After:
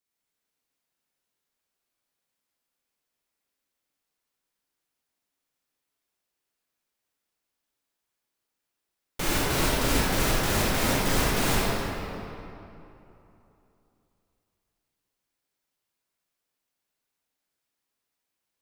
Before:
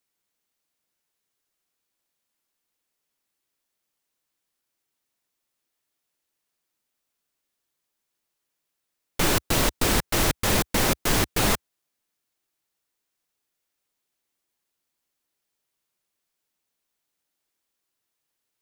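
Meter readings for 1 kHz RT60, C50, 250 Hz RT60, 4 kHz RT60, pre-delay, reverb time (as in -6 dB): 3.0 s, -4.5 dB, 3.1 s, 1.8 s, 30 ms, 3.0 s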